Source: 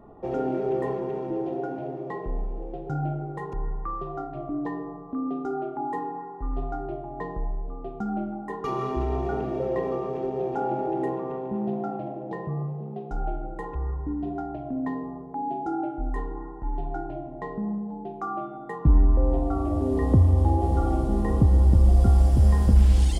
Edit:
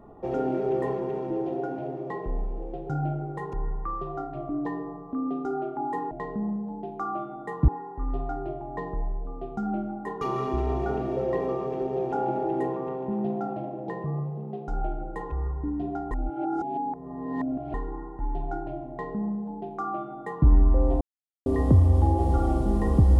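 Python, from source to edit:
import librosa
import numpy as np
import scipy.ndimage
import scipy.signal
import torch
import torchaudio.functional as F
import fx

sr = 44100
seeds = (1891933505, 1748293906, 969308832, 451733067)

y = fx.edit(x, sr, fx.reverse_span(start_s=14.54, length_s=1.63),
    fx.duplicate(start_s=17.33, length_s=1.57, to_s=6.11),
    fx.silence(start_s=19.44, length_s=0.45), tone=tone)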